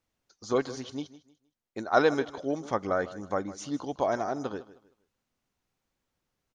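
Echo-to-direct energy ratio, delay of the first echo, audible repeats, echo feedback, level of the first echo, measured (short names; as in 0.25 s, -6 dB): -16.5 dB, 0.156 s, 2, 29%, -17.0 dB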